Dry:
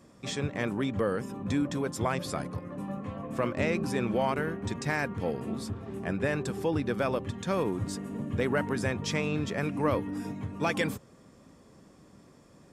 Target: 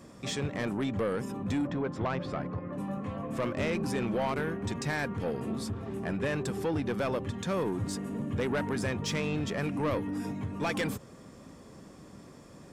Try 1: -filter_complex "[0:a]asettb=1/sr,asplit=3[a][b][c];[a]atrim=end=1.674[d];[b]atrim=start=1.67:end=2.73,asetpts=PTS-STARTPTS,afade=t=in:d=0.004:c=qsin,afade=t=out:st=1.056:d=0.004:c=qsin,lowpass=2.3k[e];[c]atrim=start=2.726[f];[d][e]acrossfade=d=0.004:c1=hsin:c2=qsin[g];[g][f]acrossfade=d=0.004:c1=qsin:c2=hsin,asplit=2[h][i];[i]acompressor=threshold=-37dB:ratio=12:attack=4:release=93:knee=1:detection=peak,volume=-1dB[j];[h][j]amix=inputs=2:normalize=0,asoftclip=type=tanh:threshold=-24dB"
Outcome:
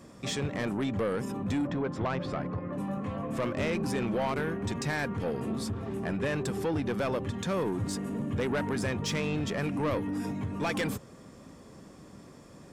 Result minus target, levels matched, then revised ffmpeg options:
compressor: peak gain reduction -7.5 dB
-filter_complex "[0:a]asettb=1/sr,asplit=3[a][b][c];[a]atrim=end=1.674[d];[b]atrim=start=1.67:end=2.73,asetpts=PTS-STARTPTS,afade=t=in:d=0.004:c=qsin,afade=t=out:st=1.056:d=0.004:c=qsin,lowpass=2.3k[e];[c]atrim=start=2.726[f];[d][e]acrossfade=d=0.004:c1=hsin:c2=qsin[g];[g][f]acrossfade=d=0.004:c1=qsin:c2=hsin,asplit=2[h][i];[i]acompressor=threshold=-45dB:ratio=12:attack=4:release=93:knee=1:detection=peak,volume=-1dB[j];[h][j]amix=inputs=2:normalize=0,asoftclip=type=tanh:threshold=-24dB"

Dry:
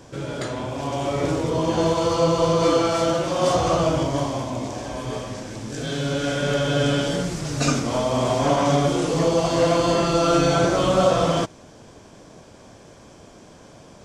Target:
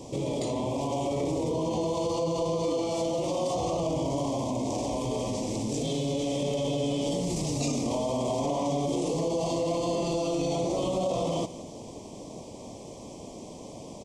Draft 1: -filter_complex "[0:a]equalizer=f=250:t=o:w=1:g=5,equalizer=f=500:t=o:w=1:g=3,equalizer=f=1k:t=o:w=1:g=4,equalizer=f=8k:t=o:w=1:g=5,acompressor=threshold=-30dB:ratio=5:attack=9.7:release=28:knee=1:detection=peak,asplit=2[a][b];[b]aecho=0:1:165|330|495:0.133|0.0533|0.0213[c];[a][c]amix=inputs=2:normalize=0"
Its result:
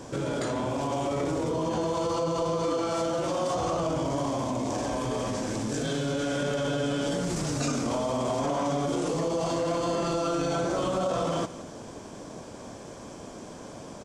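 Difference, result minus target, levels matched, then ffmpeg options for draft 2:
2000 Hz band +8.0 dB
-filter_complex "[0:a]equalizer=f=250:t=o:w=1:g=5,equalizer=f=500:t=o:w=1:g=3,equalizer=f=1k:t=o:w=1:g=4,equalizer=f=8k:t=o:w=1:g=5,acompressor=threshold=-30dB:ratio=5:attack=9.7:release=28:knee=1:detection=peak,asuperstop=centerf=1500:order=4:qfactor=1.1,asplit=2[a][b];[b]aecho=0:1:165|330|495:0.133|0.0533|0.0213[c];[a][c]amix=inputs=2:normalize=0"

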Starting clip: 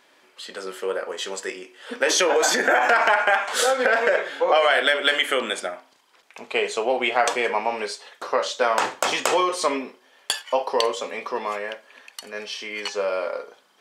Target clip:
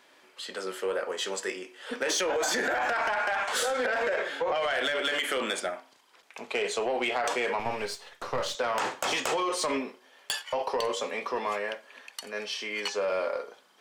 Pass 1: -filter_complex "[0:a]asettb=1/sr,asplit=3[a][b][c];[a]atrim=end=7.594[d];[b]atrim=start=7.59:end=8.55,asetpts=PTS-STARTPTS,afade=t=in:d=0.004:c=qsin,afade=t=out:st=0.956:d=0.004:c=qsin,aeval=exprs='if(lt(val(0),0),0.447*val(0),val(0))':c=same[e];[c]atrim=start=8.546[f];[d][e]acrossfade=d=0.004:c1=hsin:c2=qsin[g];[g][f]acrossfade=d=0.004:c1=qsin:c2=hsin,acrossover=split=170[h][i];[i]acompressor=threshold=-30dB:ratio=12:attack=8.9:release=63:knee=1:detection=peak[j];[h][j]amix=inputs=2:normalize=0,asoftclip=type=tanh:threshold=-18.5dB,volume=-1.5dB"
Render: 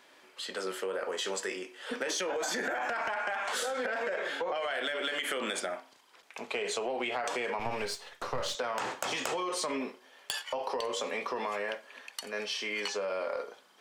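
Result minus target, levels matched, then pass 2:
compressor: peak gain reduction +6.5 dB
-filter_complex "[0:a]asettb=1/sr,asplit=3[a][b][c];[a]atrim=end=7.594[d];[b]atrim=start=7.59:end=8.55,asetpts=PTS-STARTPTS,afade=t=in:d=0.004:c=qsin,afade=t=out:st=0.956:d=0.004:c=qsin,aeval=exprs='if(lt(val(0),0),0.447*val(0),val(0))':c=same[e];[c]atrim=start=8.546[f];[d][e]acrossfade=d=0.004:c1=hsin:c2=qsin[g];[g][f]acrossfade=d=0.004:c1=qsin:c2=hsin,acrossover=split=170[h][i];[i]acompressor=threshold=-23dB:ratio=12:attack=8.9:release=63:knee=1:detection=peak[j];[h][j]amix=inputs=2:normalize=0,asoftclip=type=tanh:threshold=-18.5dB,volume=-1.5dB"

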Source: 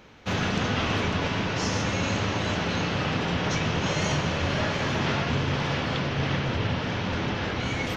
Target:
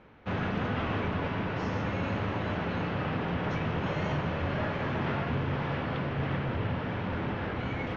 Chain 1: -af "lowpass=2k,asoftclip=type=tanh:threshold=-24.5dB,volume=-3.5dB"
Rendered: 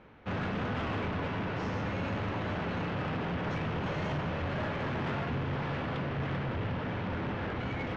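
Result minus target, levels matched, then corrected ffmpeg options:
soft clip: distortion +14 dB
-af "lowpass=2k,asoftclip=type=tanh:threshold=-14.5dB,volume=-3.5dB"

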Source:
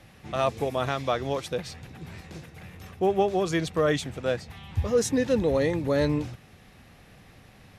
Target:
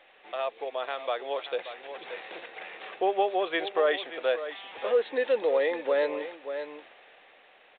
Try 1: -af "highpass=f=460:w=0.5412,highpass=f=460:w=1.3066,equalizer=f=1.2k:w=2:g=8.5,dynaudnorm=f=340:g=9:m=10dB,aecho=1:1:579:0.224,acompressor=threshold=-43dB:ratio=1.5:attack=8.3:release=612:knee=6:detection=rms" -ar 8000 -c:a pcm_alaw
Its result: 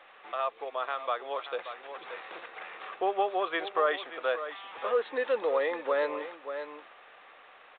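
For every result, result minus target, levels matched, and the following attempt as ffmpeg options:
compressor: peak gain reduction +4 dB; 1000 Hz band +3.5 dB
-af "highpass=f=460:w=0.5412,highpass=f=460:w=1.3066,equalizer=f=1.2k:w=2:g=8.5,dynaudnorm=f=340:g=9:m=10dB,aecho=1:1:579:0.224,acompressor=threshold=-34dB:ratio=1.5:attack=8.3:release=612:knee=6:detection=rms" -ar 8000 -c:a pcm_alaw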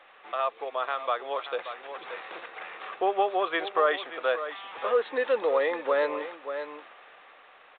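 1000 Hz band +3.5 dB
-af "highpass=f=460:w=0.5412,highpass=f=460:w=1.3066,equalizer=f=1.2k:w=2:g=-3,dynaudnorm=f=340:g=9:m=10dB,aecho=1:1:579:0.224,acompressor=threshold=-34dB:ratio=1.5:attack=8.3:release=612:knee=6:detection=rms" -ar 8000 -c:a pcm_alaw

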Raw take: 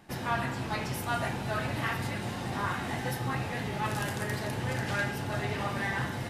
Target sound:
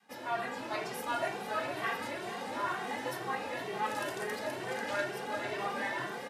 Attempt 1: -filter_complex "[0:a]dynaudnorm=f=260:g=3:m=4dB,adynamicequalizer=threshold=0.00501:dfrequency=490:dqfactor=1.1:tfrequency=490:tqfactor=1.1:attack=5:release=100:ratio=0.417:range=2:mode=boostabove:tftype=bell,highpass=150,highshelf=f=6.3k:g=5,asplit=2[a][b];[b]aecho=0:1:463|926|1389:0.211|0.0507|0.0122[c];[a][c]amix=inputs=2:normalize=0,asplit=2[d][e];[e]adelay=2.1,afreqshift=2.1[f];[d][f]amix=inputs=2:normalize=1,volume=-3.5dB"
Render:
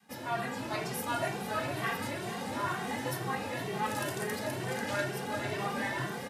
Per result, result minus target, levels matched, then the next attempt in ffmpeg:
125 Hz band +10.0 dB; 8000 Hz band +4.0 dB
-filter_complex "[0:a]dynaudnorm=f=260:g=3:m=4dB,adynamicequalizer=threshold=0.00501:dfrequency=490:dqfactor=1.1:tfrequency=490:tqfactor=1.1:attack=5:release=100:ratio=0.417:range=2:mode=boostabove:tftype=bell,highpass=330,highshelf=f=6.3k:g=5,asplit=2[a][b];[b]aecho=0:1:463|926|1389:0.211|0.0507|0.0122[c];[a][c]amix=inputs=2:normalize=0,asplit=2[d][e];[e]adelay=2.1,afreqshift=2.1[f];[d][f]amix=inputs=2:normalize=1,volume=-3.5dB"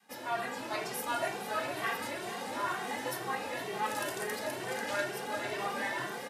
8000 Hz band +5.0 dB
-filter_complex "[0:a]dynaudnorm=f=260:g=3:m=4dB,adynamicequalizer=threshold=0.00501:dfrequency=490:dqfactor=1.1:tfrequency=490:tqfactor=1.1:attack=5:release=100:ratio=0.417:range=2:mode=boostabove:tftype=bell,highpass=330,highshelf=f=6.3k:g=-4,asplit=2[a][b];[b]aecho=0:1:463|926|1389:0.211|0.0507|0.0122[c];[a][c]amix=inputs=2:normalize=0,asplit=2[d][e];[e]adelay=2.1,afreqshift=2.1[f];[d][f]amix=inputs=2:normalize=1,volume=-3.5dB"

